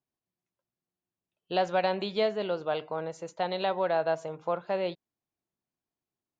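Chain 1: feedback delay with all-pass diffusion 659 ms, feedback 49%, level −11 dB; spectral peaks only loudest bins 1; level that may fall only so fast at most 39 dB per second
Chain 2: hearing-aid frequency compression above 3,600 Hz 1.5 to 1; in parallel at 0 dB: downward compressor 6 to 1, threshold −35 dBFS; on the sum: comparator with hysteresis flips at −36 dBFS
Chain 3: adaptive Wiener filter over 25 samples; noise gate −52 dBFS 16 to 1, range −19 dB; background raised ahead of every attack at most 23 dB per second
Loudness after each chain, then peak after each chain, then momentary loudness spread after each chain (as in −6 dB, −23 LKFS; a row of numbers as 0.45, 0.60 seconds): −36.5, −31.5, −29.0 LKFS; −27.0, −24.0, −14.5 dBFS; 16, 3, 7 LU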